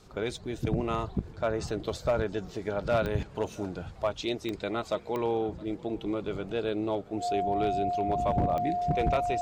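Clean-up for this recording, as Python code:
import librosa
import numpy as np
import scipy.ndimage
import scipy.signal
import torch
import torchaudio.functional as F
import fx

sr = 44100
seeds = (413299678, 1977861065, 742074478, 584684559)

y = fx.fix_declip(x, sr, threshold_db=-19.0)
y = fx.fix_declick_ar(y, sr, threshold=10.0)
y = fx.notch(y, sr, hz=710.0, q=30.0)
y = fx.fix_echo_inverse(y, sr, delay_ms=669, level_db=-23.0)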